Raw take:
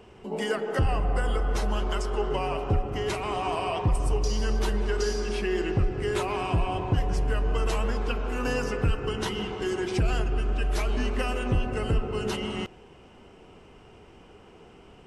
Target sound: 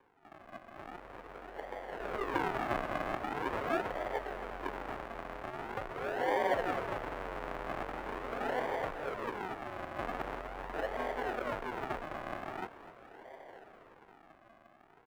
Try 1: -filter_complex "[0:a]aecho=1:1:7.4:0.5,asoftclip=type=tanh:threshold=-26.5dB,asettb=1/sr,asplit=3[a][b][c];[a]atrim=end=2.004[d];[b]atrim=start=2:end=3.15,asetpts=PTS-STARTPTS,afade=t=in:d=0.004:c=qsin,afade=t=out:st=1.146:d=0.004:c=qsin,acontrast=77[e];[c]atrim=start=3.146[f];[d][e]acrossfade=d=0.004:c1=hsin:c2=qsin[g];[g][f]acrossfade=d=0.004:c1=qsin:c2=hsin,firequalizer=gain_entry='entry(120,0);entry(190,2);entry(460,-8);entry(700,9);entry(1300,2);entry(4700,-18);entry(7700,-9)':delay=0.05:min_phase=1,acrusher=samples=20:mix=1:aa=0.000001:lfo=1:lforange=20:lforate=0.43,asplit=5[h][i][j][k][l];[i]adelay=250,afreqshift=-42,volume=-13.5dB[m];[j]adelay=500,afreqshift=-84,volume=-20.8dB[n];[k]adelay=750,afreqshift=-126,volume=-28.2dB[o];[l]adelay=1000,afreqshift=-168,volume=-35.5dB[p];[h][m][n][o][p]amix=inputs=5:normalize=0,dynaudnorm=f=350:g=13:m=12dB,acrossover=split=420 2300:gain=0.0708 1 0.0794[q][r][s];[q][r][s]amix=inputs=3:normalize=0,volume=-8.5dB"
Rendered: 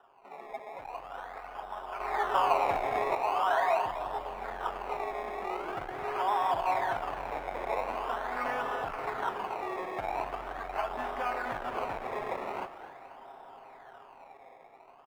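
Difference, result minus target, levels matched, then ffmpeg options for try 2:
decimation with a swept rate: distortion -6 dB
-filter_complex "[0:a]aecho=1:1:7.4:0.5,asoftclip=type=tanh:threshold=-26.5dB,asettb=1/sr,asplit=3[a][b][c];[a]atrim=end=2.004[d];[b]atrim=start=2:end=3.15,asetpts=PTS-STARTPTS,afade=t=in:d=0.004:c=qsin,afade=t=out:st=1.146:d=0.004:c=qsin,acontrast=77[e];[c]atrim=start=3.146[f];[d][e]acrossfade=d=0.004:c1=hsin:c2=qsin[g];[g][f]acrossfade=d=0.004:c1=qsin:c2=hsin,firequalizer=gain_entry='entry(120,0);entry(190,2);entry(460,-8);entry(700,9);entry(1300,2);entry(4700,-18);entry(7700,-9)':delay=0.05:min_phase=1,acrusher=samples=65:mix=1:aa=0.000001:lfo=1:lforange=65:lforate=0.43,asplit=5[h][i][j][k][l];[i]adelay=250,afreqshift=-42,volume=-13.5dB[m];[j]adelay=500,afreqshift=-84,volume=-20.8dB[n];[k]adelay=750,afreqshift=-126,volume=-28.2dB[o];[l]adelay=1000,afreqshift=-168,volume=-35.5dB[p];[h][m][n][o][p]amix=inputs=5:normalize=0,dynaudnorm=f=350:g=13:m=12dB,acrossover=split=420 2300:gain=0.0708 1 0.0794[q][r][s];[q][r][s]amix=inputs=3:normalize=0,volume=-8.5dB"

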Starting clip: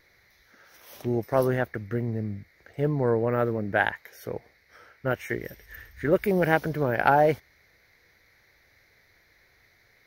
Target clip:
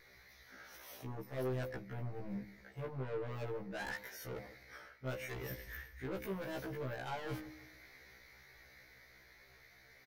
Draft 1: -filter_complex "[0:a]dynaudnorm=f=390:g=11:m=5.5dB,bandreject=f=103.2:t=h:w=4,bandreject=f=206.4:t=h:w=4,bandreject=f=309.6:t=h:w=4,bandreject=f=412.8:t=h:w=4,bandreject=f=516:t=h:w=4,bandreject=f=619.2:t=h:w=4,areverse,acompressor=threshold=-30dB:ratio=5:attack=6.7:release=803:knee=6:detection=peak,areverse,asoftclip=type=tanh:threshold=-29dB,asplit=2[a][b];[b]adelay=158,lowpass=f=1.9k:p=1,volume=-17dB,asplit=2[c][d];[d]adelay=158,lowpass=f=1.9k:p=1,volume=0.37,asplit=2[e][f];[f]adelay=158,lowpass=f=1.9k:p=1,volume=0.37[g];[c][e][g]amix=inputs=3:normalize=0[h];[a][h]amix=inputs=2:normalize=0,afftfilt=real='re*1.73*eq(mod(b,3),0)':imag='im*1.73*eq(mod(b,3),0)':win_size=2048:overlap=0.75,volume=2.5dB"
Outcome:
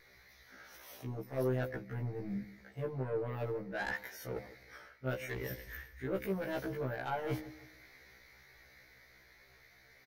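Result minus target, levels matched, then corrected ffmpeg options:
soft clip: distortion -7 dB
-filter_complex "[0:a]dynaudnorm=f=390:g=11:m=5.5dB,bandreject=f=103.2:t=h:w=4,bandreject=f=206.4:t=h:w=4,bandreject=f=309.6:t=h:w=4,bandreject=f=412.8:t=h:w=4,bandreject=f=516:t=h:w=4,bandreject=f=619.2:t=h:w=4,areverse,acompressor=threshold=-30dB:ratio=5:attack=6.7:release=803:knee=6:detection=peak,areverse,asoftclip=type=tanh:threshold=-38dB,asplit=2[a][b];[b]adelay=158,lowpass=f=1.9k:p=1,volume=-17dB,asplit=2[c][d];[d]adelay=158,lowpass=f=1.9k:p=1,volume=0.37,asplit=2[e][f];[f]adelay=158,lowpass=f=1.9k:p=1,volume=0.37[g];[c][e][g]amix=inputs=3:normalize=0[h];[a][h]amix=inputs=2:normalize=0,afftfilt=real='re*1.73*eq(mod(b,3),0)':imag='im*1.73*eq(mod(b,3),0)':win_size=2048:overlap=0.75,volume=2.5dB"

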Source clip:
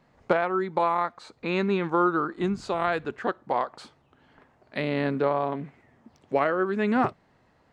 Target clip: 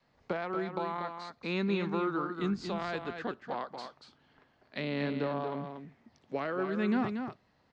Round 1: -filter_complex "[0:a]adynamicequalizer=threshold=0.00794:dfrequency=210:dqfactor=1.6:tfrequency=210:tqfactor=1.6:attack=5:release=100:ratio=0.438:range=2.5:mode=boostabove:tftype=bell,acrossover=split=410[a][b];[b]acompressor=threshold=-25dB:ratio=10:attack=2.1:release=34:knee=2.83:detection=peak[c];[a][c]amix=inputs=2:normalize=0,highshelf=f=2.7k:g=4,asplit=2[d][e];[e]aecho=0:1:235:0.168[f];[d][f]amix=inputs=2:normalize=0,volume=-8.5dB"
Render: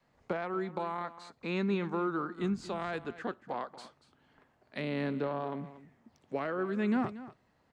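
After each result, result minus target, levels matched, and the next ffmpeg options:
echo-to-direct -8.5 dB; 4000 Hz band -3.5 dB
-filter_complex "[0:a]adynamicequalizer=threshold=0.00794:dfrequency=210:dqfactor=1.6:tfrequency=210:tqfactor=1.6:attack=5:release=100:ratio=0.438:range=2.5:mode=boostabove:tftype=bell,acrossover=split=410[a][b];[b]acompressor=threshold=-25dB:ratio=10:attack=2.1:release=34:knee=2.83:detection=peak[c];[a][c]amix=inputs=2:normalize=0,highshelf=f=2.7k:g=4,asplit=2[d][e];[e]aecho=0:1:235:0.447[f];[d][f]amix=inputs=2:normalize=0,volume=-8.5dB"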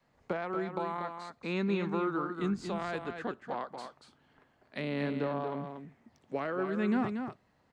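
4000 Hz band -3.5 dB
-filter_complex "[0:a]adynamicequalizer=threshold=0.00794:dfrequency=210:dqfactor=1.6:tfrequency=210:tqfactor=1.6:attack=5:release=100:ratio=0.438:range=2.5:mode=boostabove:tftype=bell,acrossover=split=410[a][b];[b]acompressor=threshold=-25dB:ratio=10:attack=2.1:release=34:knee=2.83:detection=peak[c];[a][c]amix=inputs=2:normalize=0,lowpass=f=5k:t=q:w=1.6,highshelf=f=2.7k:g=4,asplit=2[d][e];[e]aecho=0:1:235:0.447[f];[d][f]amix=inputs=2:normalize=0,volume=-8.5dB"

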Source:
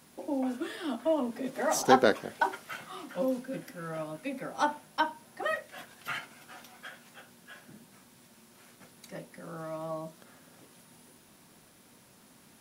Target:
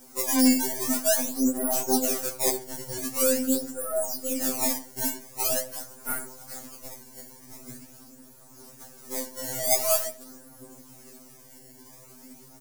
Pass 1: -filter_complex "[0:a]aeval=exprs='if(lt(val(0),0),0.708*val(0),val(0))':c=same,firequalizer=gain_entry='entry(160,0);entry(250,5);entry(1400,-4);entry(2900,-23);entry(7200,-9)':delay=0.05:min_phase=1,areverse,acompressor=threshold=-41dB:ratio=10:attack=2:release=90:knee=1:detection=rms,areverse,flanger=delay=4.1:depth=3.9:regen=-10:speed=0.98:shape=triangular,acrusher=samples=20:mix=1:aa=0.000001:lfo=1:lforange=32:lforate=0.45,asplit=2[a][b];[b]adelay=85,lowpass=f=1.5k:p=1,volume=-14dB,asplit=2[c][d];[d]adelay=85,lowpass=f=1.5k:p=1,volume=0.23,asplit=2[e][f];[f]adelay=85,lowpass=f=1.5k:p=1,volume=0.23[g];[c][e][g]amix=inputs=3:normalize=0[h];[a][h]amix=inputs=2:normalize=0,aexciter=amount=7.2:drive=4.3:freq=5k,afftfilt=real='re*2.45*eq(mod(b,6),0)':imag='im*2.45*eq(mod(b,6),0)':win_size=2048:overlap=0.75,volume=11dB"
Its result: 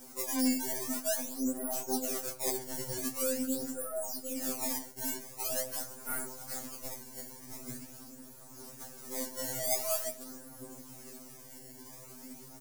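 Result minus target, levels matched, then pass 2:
compressor: peak gain reduction +9.5 dB
-filter_complex "[0:a]aeval=exprs='if(lt(val(0),0),0.708*val(0),val(0))':c=same,firequalizer=gain_entry='entry(160,0);entry(250,5);entry(1400,-4);entry(2900,-23);entry(7200,-9)':delay=0.05:min_phase=1,areverse,acompressor=threshold=-30.5dB:ratio=10:attack=2:release=90:knee=1:detection=rms,areverse,flanger=delay=4.1:depth=3.9:regen=-10:speed=0.98:shape=triangular,acrusher=samples=20:mix=1:aa=0.000001:lfo=1:lforange=32:lforate=0.45,asplit=2[a][b];[b]adelay=85,lowpass=f=1.5k:p=1,volume=-14dB,asplit=2[c][d];[d]adelay=85,lowpass=f=1.5k:p=1,volume=0.23,asplit=2[e][f];[f]adelay=85,lowpass=f=1.5k:p=1,volume=0.23[g];[c][e][g]amix=inputs=3:normalize=0[h];[a][h]amix=inputs=2:normalize=0,aexciter=amount=7.2:drive=4.3:freq=5k,afftfilt=real='re*2.45*eq(mod(b,6),0)':imag='im*2.45*eq(mod(b,6),0)':win_size=2048:overlap=0.75,volume=11dB"

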